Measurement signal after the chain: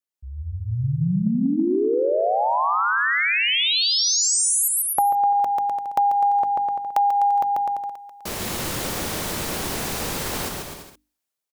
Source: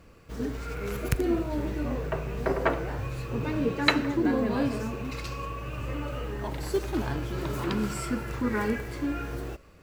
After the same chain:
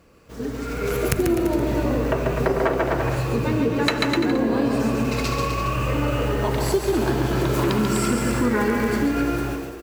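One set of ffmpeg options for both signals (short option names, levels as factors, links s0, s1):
-filter_complex "[0:a]lowshelf=f=76:g=-10.5,asplit=2[s0][s1];[s1]aeval=exprs='0.188*(abs(mod(val(0)/0.188+3,4)-2)-1)':c=same,volume=0.355[s2];[s0][s2]amix=inputs=2:normalize=0,equalizer=f=2000:t=o:w=2.6:g=-3,dynaudnorm=f=290:g=5:m=3.55,bandreject=f=50:t=h:w=6,bandreject=f=100:t=h:w=6,bandreject=f=150:t=h:w=6,bandreject=f=200:t=h:w=6,bandreject=f=250:t=h:w=6,bandreject=f=300:t=h:w=6,aecho=1:1:140|252|341.6|413.3|470.6:0.631|0.398|0.251|0.158|0.1,acompressor=threshold=0.141:ratio=6"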